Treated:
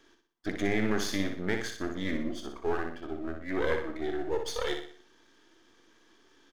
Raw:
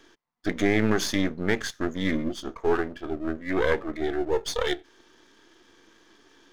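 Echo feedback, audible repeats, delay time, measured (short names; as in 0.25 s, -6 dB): 43%, 4, 61 ms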